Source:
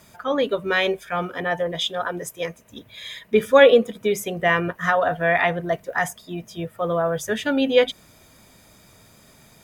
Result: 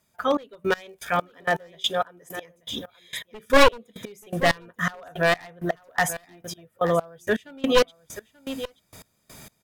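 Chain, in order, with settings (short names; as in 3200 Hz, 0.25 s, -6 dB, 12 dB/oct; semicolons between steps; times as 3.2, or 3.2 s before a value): one-sided fold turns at -15 dBFS; 0.84–1.65 crackle 100/s -34 dBFS; high shelf 5900 Hz +4.5 dB; echo 0.883 s -15 dB; in parallel at 0 dB: compressor, threshold -30 dBFS, peak gain reduction 19.5 dB; on the sum: step gate "..xx...x." 163 bpm -24 dB; gain -1 dB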